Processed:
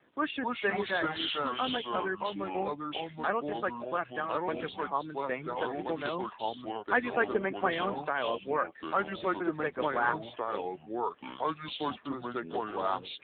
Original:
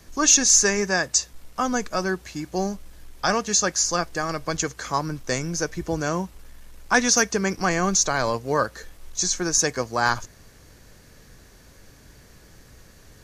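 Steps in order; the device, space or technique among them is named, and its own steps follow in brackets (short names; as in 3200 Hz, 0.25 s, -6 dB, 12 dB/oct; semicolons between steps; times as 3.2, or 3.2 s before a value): reverb removal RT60 0.62 s; 7.06–7.67 bell 610 Hz +3.5 dB 2.2 oct; echoes that change speed 0.213 s, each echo -4 st, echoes 3; telephone (BPF 280–3200 Hz; gain -6 dB; AMR-NB 7.4 kbps 8000 Hz)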